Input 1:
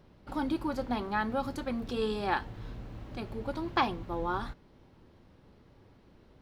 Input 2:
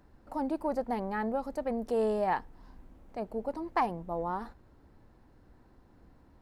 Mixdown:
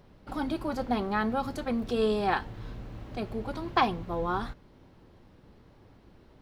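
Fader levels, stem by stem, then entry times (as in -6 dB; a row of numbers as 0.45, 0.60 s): +2.0, -4.0 dB; 0.00, 0.00 s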